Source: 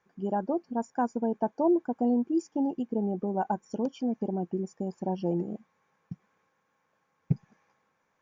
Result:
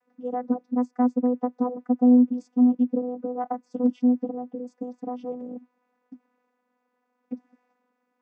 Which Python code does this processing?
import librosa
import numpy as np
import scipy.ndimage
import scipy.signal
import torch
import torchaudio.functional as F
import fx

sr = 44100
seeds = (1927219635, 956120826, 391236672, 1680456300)

y = fx.vocoder(x, sr, bands=16, carrier='saw', carrier_hz=248.0)
y = F.gain(torch.from_numpy(y), 6.5).numpy()